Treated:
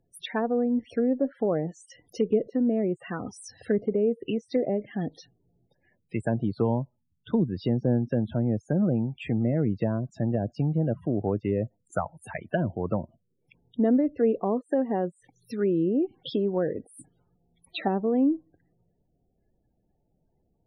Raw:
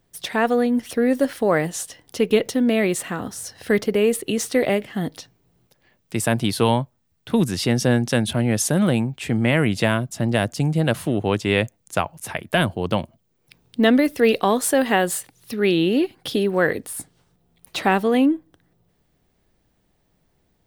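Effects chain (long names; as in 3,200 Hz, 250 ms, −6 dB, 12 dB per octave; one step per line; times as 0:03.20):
spectral peaks only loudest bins 32
treble cut that deepens with the level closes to 610 Hz, closed at −16 dBFS
level −5 dB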